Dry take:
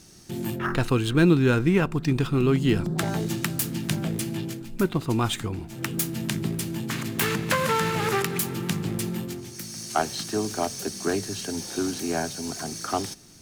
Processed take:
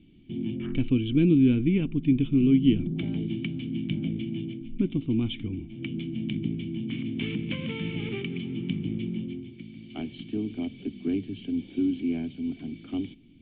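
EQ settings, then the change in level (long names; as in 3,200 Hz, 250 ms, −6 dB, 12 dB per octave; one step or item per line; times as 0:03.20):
formant resonators in series i
low-shelf EQ 78 Hz +10.5 dB
high-shelf EQ 2,400 Hz +8.5 dB
+4.5 dB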